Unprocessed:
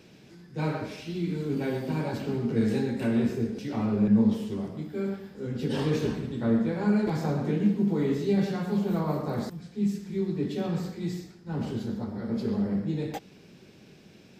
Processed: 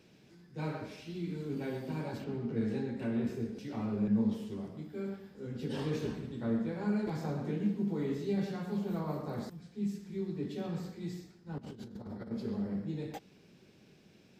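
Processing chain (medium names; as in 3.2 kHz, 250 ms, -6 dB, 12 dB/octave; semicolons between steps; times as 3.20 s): 2.24–3.27 s: low-pass 3.1 kHz 6 dB/octave; 11.58–12.31 s: compressor with a negative ratio -36 dBFS, ratio -0.5; trim -8 dB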